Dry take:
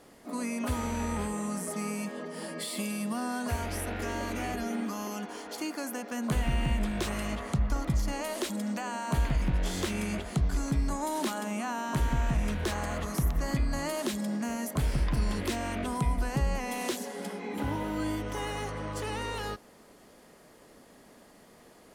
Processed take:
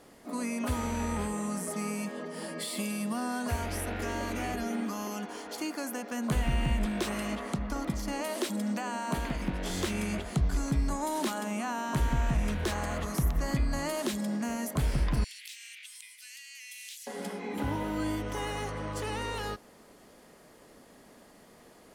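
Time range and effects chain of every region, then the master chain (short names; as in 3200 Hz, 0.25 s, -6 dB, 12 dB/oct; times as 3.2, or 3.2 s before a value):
6.86–9.7 resonant low shelf 160 Hz -8.5 dB, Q 1.5 + notch 6800 Hz, Q 24
15.24–17.07 steep high-pass 2200 Hz + compressor 3:1, threshold -42 dBFS
whole clip: dry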